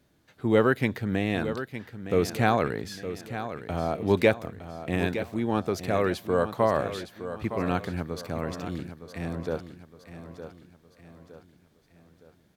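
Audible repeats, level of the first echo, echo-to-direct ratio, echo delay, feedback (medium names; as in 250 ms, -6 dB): 4, -11.0 dB, -10.0 dB, 913 ms, 44%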